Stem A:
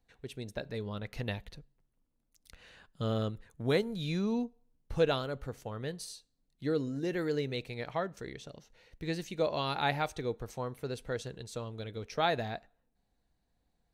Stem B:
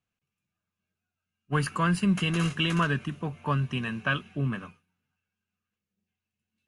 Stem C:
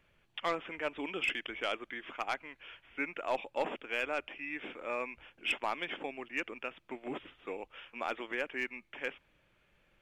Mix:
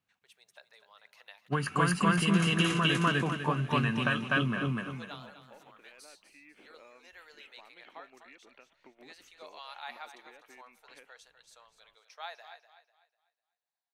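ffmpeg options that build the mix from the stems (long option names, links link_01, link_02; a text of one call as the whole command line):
ffmpeg -i stem1.wav -i stem2.wav -i stem3.wav -filter_complex "[0:a]highpass=frequency=770:width=0.5412,highpass=frequency=770:width=1.3066,volume=-10.5dB,asplit=2[link_01][link_02];[link_02]volume=-11.5dB[link_03];[1:a]highpass=frequency=150:poles=1,highshelf=frequency=9400:gain=6,volume=2.5dB,asplit=2[link_04][link_05];[link_05]volume=-3.5dB[link_06];[2:a]acompressor=threshold=-45dB:ratio=6,adelay=1950,volume=-8dB[link_07];[link_04][link_07]amix=inputs=2:normalize=0,highshelf=frequency=6000:gain=-9.5,acompressor=threshold=-26dB:ratio=6,volume=0dB[link_08];[link_03][link_06]amix=inputs=2:normalize=0,aecho=0:1:248|496|744|992|1240:1|0.33|0.109|0.0359|0.0119[link_09];[link_01][link_08][link_09]amix=inputs=3:normalize=0" out.wav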